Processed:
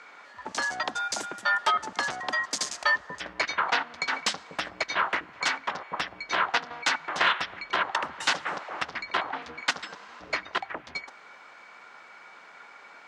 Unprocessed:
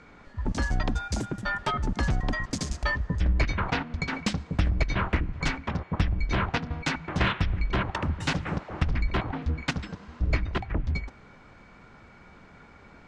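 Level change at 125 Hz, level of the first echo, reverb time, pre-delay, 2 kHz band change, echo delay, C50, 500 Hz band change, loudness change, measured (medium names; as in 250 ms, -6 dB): -26.5 dB, no echo, no reverb, no reverb, +5.0 dB, no echo, no reverb, -1.0 dB, +0.5 dB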